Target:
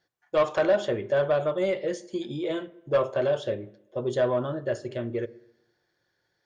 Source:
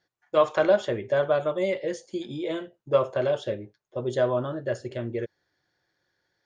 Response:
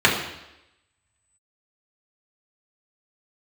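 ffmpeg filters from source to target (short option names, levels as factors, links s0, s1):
-filter_complex "[0:a]asplit=2[s0][s1];[1:a]atrim=start_sample=2205,lowpass=f=1800:p=1[s2];[s1][s2]afir=irnorm=-1:irlink=0,volume=0.02[s3];[s0][s3]amix=inputs=2:normalize=0,asoftclip=type=tanh:threshold=0.188"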